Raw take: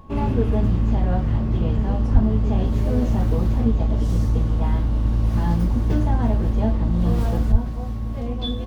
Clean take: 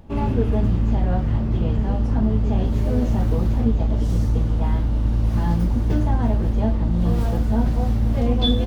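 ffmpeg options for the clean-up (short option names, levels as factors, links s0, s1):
-filter_complex "[0:a]bandreject=f=1100:w=30,asplit=3[s0][s1][s2];[s0]afade=t=out:st=2.13:d=0.02[s3];[s1]highpass=f=140:w=0.5412,highpass=f=140:w=1.3066,afade=t=in:st=2.13:d=0.02,afade=t=out:st=2.25:d=0.02[s4];[s2]afade=t=in:st=2.25:d=0.02[s5];[s3][s4][s5]amix=inputs=3:normalize=0,asplit=3[s6][s7][s8];[s6]afade=t=out:st=7.51:d=0.02[s9];[s7]highpass=f=140:w=0.5412,highpass=f=140:w=1.3066,afade=t=in:st=7.51:d=0.02,afade=t=out:st=7.63:d=0.02[s10];[s8]afade=t=in:st=7.63:d=0.02[s11];[s9][s10][s11]amix=inputs=3:normalize=0,asetnsamples=n=441:p=0,asendcmd='7.52 volume volume 7.5dB',volume=1"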